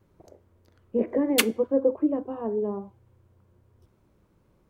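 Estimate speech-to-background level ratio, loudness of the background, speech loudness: 0.0 dB, −27.0 LKFS, −27.0 LKFS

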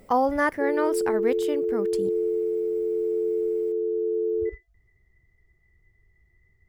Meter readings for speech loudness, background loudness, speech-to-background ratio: −27.5 LKFS, −26.5 LKFS, −1.0 dB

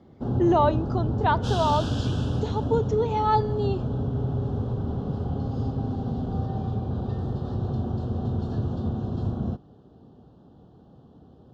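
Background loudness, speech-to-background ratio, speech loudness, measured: −28.5 LKFS, 3.0 dB, −25.5 LKFS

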